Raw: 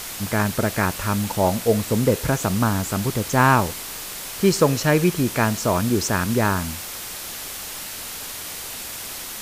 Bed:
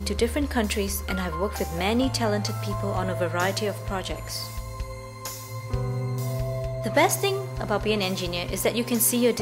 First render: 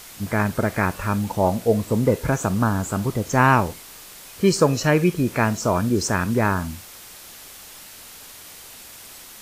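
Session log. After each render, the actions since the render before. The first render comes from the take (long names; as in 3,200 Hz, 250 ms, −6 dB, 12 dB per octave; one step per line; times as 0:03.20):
noise reduction from a noise print 9 dB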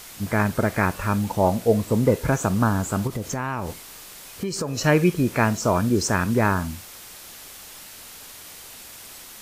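0:03.07–0:04.78: downward compressor 10 to 1, threshold −23 dBFS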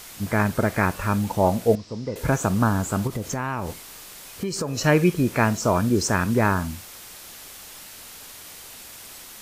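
0:01.75–0:02.16: transistor ladder low-pass 5,600 Hz, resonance 70%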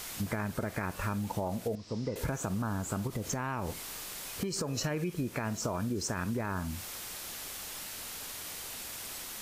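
brickwall limiter −13 dBFS, peak gain reduction 7.5 dB
downward compressor, threshold −31 dBFS, peak gain reduction 13 dB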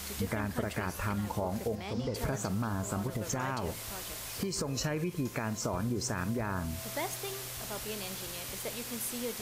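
mix in bed −16.5 dB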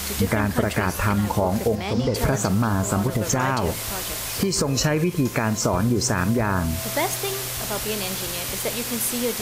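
level +12 dB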